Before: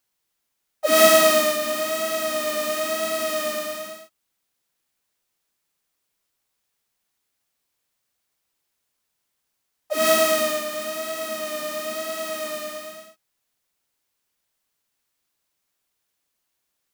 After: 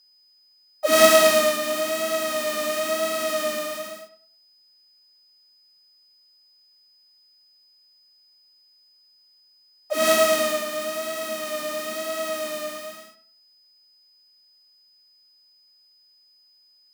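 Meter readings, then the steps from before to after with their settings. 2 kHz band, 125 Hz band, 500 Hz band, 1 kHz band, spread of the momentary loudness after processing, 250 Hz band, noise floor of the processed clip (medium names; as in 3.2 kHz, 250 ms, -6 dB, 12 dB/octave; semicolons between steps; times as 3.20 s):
0.0 dB, no reading, 0.0 dB, 0.0 dB, 15 LU, -0.5 dB, -59 dBFS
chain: self-modulated delay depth 0.075 ms; tape echo 100 ms, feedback 27%, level -10 dB, low-pass 1.9 kHz; whistle 5 kHz -56 dBFS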